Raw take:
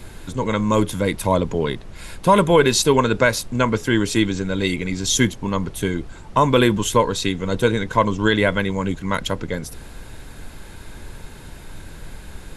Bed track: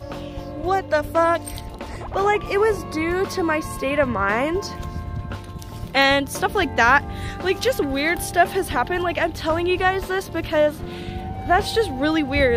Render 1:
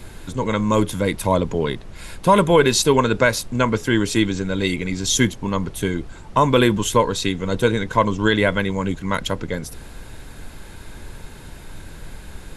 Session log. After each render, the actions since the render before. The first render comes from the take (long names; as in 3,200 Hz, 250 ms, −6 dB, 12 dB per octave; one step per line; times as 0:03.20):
no processing that can be heard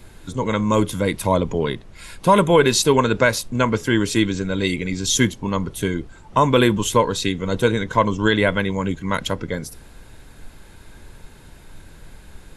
noise reduction from a noise print 6 dB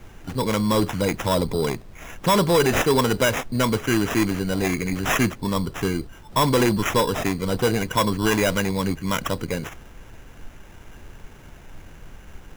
decimation without filtering 10×
soft clipping −12.5 dBFS, distortion −12 dB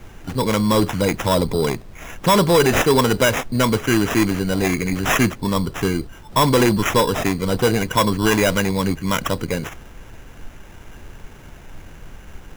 level +3.5 dB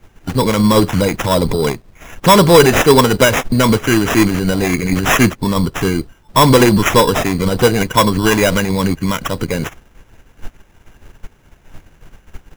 boost into a limiter +18 dB
expander for the loud parts 2.5 to 1, over −22 dBFS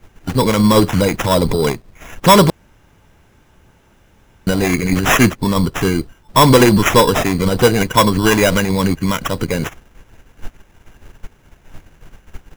0:02.50–0:04.47: fill with room tone